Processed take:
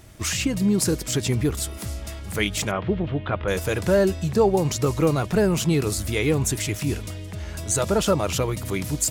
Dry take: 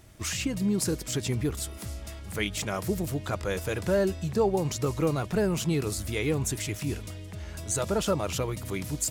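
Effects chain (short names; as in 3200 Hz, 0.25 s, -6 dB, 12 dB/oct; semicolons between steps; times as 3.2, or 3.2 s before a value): 2.71–3.48 Chebyshev low-pass 3300 Hz, order 4; gain +6 dB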